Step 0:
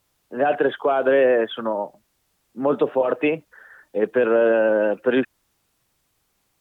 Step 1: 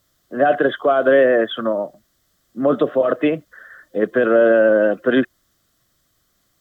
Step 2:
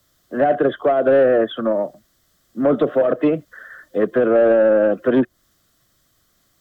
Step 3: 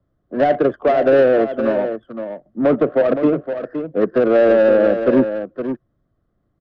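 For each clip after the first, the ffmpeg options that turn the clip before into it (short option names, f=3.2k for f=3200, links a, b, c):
-af "superequalizer=7b=0.631:9b=0.282:12b=0.355:16b=0.631,volume=5dB"
-filter_complex "[0:a]acrossover=split=130|600|700[a][b][c][d];[d]acompressor=threshold=-33dB:ratio=6[e];[a][b][c][e]amix=inputs=4:normalize=0,asoftclip=type=tanh:threshold=-10dB,volume=2.5dB"
-af "adynamicsmooth=sensitivity=0.5:basefreq=710,aecho=1:1:516:0.355,volume=1.5dB"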